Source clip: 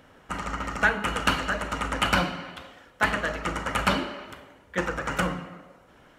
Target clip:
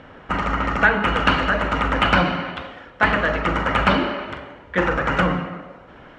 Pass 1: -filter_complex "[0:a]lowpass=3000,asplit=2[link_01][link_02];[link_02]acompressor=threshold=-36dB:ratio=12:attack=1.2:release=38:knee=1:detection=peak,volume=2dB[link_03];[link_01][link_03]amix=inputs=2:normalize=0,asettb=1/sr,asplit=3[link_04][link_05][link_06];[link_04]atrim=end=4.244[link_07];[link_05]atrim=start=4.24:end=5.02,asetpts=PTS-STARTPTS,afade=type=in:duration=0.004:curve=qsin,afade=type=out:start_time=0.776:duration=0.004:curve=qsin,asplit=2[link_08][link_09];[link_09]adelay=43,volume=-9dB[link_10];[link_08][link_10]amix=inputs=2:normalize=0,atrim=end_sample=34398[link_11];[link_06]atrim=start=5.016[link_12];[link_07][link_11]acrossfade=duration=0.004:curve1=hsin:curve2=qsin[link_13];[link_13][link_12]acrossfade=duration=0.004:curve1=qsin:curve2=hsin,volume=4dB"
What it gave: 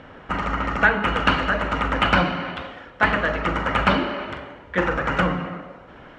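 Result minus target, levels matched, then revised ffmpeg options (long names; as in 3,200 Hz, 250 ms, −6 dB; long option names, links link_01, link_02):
downward compressor: peak gain reduction +6.5 dB
-filter_complex "[0:a]lowpass=3000,asplit=2[link_01][link_02];[link_02]acompressor=threshold=-29dB:ratio=12:attack=1.2:release=38:knee=1:detection=peak,volume=2dB[link_03];[link_01][link_03]amix=inputs=2:normalize=0,asettb=1/sr,asplit=3[link_04][link_05][link_06];[link_04]atrim=end=4.244[link_07];[link_05]atrim=start=4.24:end=5.02,asetpts=PTS-STARTPTS,afade=type=in:duration=0.004:curve=qsin,afade=type=out:start_time=0.776:duration=0.004:curve=qsin,asplit=2[link_08][link_09];[link_09]adelay=43,volume=-9dB[link_10];[link_08][link_10]amix=inputs=2:normalize=0,atrim=end_sample=34398[link_11];[link_06]atrim=start=5.016[link_12];[link_07][link_11]acrossfade=duration=0.004:curve1=hsin:curve2=qsin[link_13];[link_13][link_12]acrossfade=duration=0.004:curve1=qsin:curve2=hsin,volume=4dB"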